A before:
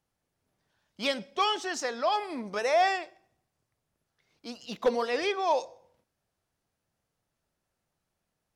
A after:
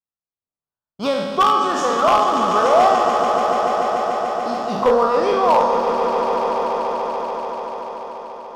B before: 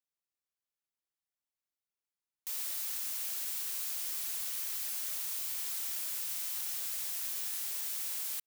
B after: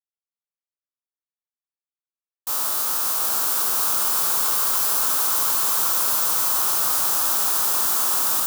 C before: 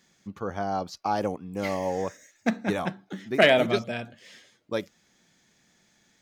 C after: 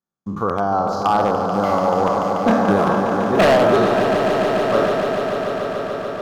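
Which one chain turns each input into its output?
spectral sustain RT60 1.04 s; gate -49 dBFS, range -36 dB; resonant high shelf 1.6 kHz -8.5 dB, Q 3; in parallel at +3 dB: compression 6:1, threshold -29 dBFS; on the sum: wavefolder -10.5 dBFS; on a send: echo with a slow build-up 145 ms, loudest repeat 5, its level -10 dB; on the sum: normalise loudness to -18 LUFS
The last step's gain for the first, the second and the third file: +2.5 dB, +11.5 dB, +2.0 dB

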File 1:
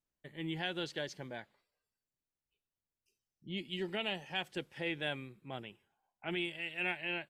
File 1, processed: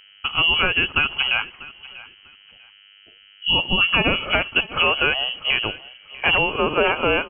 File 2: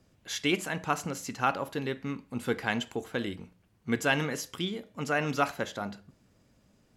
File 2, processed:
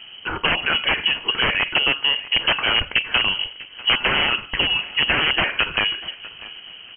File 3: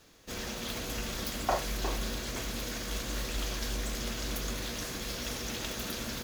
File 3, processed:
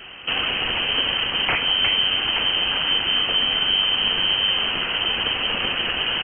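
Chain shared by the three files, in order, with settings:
integer overflow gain 23.5 dB; compression 3:1, threshold -43 dBFS; mains buzz 100 Hz, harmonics 18, -77 dBFS -5 dB/octave; feedback delay 643 ms, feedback 23%, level -19 dB; frequency inversion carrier 3.1 kHz; normalise loudness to -19 LUFS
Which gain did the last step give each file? +26.0 dB, +23.5 dB, +21.5 dB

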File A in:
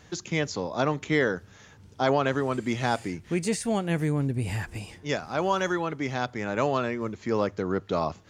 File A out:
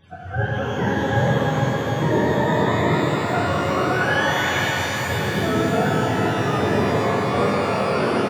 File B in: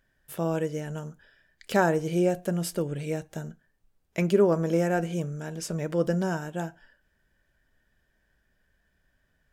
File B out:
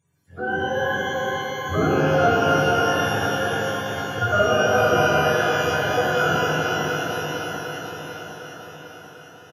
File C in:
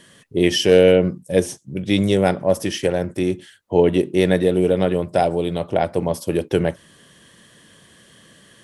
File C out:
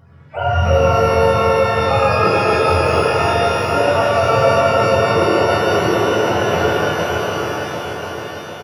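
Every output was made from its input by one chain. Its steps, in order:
spectrum inverted on a logarithmic axis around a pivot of 500 Hz; on a send: shuffle delay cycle 750 ms, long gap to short 1.5:1, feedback 49%, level -6.5 dB; on the sum: compression 2.5:1, threshold -19 dBFS; resampled via 32 kHz; pitch-shifted reverb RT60 2.9 s, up +12 st, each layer -8 dB, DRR -6.5 dB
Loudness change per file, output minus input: +7.5 LU, +6.5 LU, +3.5 LU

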